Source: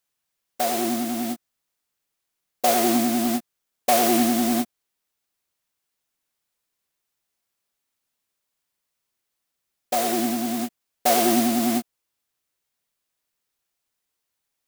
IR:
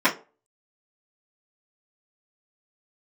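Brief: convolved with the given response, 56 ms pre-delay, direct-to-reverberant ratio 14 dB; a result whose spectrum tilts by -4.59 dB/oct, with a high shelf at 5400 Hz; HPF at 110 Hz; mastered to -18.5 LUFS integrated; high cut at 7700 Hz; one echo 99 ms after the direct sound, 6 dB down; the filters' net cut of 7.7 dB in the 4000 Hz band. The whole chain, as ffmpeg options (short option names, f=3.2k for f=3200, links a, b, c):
-filter_complex "[0:a]highpass=110,lowpass=7.7k,equalizer=f=4k:t=o:g=-6.5,highshelf=f=5.4k:g=-7.5,aecho=1:1:99:0.501,asplit=2[a][b];[1:a]atrim=start_sample=2205,adelay=56[c];[b][c]afir=irnorm=-1:irlink=0,volume=-32.5dB[d];[a][d]amix=inputs=2:normalize=0,volume=4.5dB"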